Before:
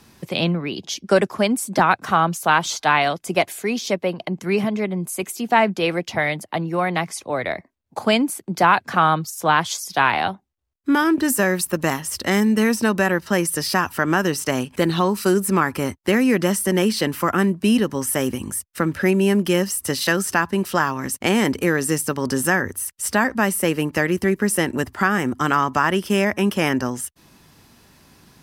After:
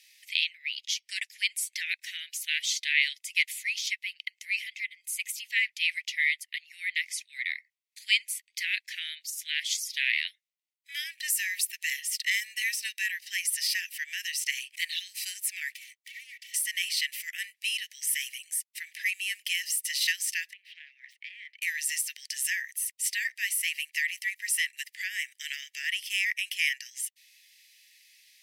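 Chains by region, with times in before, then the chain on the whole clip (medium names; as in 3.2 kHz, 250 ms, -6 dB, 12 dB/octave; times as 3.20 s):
15.70–16.54 s: comb filter that takes the minimum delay 2.6 ms + compression 4:1, threshold -35 dBFS
20.53–21.62 s: self-modulated delay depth 0.13 ms + compression, threshold -26 dBFS + distance through air 390 m
whole clip: steep high-pass 1.9 kHz 96 dB/octave; treble shelf 2.9 kHz -7.5 dB; trim +3 dB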